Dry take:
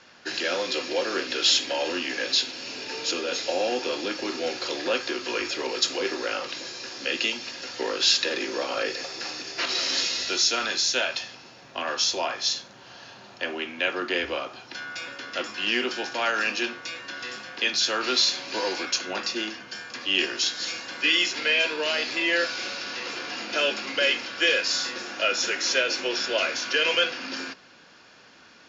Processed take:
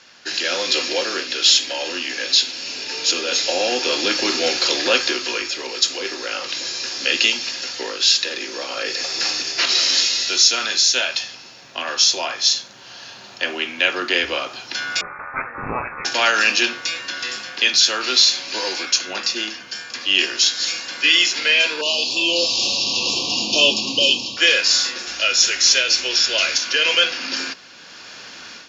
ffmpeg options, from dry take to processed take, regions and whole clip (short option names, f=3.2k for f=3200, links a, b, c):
-filter_complex "[0:a]asettb=1/sr,asplit=3[a][b][c];[a]atrim=end=15.014[d];[b]atrim=start=15.01:end=16.05,asetpts=PTS-STARTPTS,afade=t=in:d=0.004:c=qsin,afade=t=out:st=1.036:d=0.004:c=qsin,highpass=1k,aeval=exprs='val(0)*sin(2*PI*120*n/s)':c=same,lowpass=f=2.4k:t=q:w=0.5098,lowpass=f=2.4k:t=q:w=0.6013,lowpass=f=2.4k:t=q:w=0.9,lowpass=f=2.4k:t=q:w=2.563,afreqshift=-2800[e];[c]atrim=start=16.046[f];[d][e]acrossfade=d=0.004:c1=hsin:c2=qsin[g];[g][f]acrossfade=d=0.004:c1=qsin:c2=hsin,asettb=1/sr,asplit=3[h][i][j];[h]atrim=end=21.814[k];[i]atrim=start=21.81:end=24.37,asetpts=PTS-STARTPTS,afade=t=in:d=0.004:c=qsin,afade=t=out:st=2.556:d=0.004:c=qsin,asubboost=boost=6:cutoff=240,asuperstop=centerf=1700:order=12:qfactor=1.1[l];[j]atrim=start=24.366[m];[k][l]acrossfade=d=0.004:c1=hsin:c2=qsin[n];[n][m]acrossfade=d=0.004:c1=qsin:c2=hsin,asettb=1/sr,asplit=3[o][p][q];[o]atrim=end=25.074[r];[p]atrim=start=25.07:end=26.58,asetpts=PTS-STARTPTS,afade=t=in:d=0.004:c=qsin,afade=t=out:st=1.506:d=0.004:c=qsin,lowpass=6.4k,aemphasis=mode=production:type=75kf,aeval=exprs='val(0)+0.00251*(sin(2*PI*60*n/s)+sin(2*PI*2*60*n/s)/2+sin(2*PI*3*60*n/s)/3+sin(2*PI*4*60*n/s)/4+sin(2*PI*5*60*n/s)/5)':c=same[s];[q]atrim=start=26.576[t];[r][s]acrossfade=d=0.004:c1=hsin:c2=qsin[u];[u][t]acrossfade=d=0.004:c1=qsin:c2=hsin,highshelf=f=2.2k:g=10.5,dynaudnorm=f=420:g=3:m=11.5dB,volume=-1dB"